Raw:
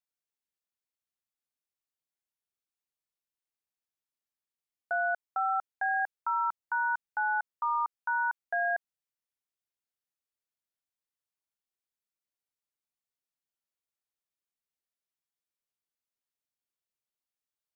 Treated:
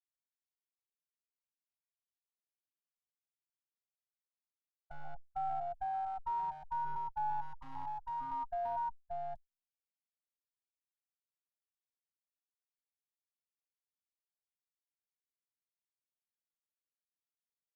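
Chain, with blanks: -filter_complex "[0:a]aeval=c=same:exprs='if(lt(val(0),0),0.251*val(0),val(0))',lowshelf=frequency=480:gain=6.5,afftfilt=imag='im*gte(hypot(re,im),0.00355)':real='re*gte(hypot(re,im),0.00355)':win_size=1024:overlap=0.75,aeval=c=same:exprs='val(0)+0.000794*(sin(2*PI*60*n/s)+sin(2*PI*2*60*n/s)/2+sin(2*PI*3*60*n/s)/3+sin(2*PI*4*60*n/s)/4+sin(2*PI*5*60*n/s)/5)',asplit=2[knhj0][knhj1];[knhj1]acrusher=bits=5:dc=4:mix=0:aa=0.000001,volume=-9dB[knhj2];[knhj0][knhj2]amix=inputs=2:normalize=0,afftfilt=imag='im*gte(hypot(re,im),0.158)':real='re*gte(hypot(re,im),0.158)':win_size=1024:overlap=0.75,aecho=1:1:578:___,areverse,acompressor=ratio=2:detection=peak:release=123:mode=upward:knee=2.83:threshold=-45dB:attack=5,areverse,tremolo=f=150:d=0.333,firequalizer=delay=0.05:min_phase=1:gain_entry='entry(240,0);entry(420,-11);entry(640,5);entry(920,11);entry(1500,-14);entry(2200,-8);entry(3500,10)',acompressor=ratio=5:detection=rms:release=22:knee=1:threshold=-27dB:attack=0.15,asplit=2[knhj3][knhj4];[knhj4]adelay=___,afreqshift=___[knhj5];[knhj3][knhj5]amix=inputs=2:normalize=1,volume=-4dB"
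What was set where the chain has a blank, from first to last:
0.596, 3, -0.42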